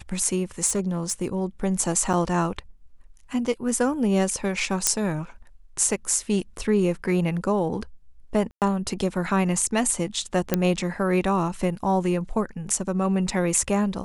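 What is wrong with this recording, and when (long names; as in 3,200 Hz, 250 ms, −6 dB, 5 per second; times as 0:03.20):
0:00.66–0:01.42: clipping −19 dBFS
0:02.13–0:02.14: drop-out 5.2 ms
0:04.87: click −2 dBFS
0:08.51–0:08.62: drop-out 108 ms
0:10.54: click −5 dBFS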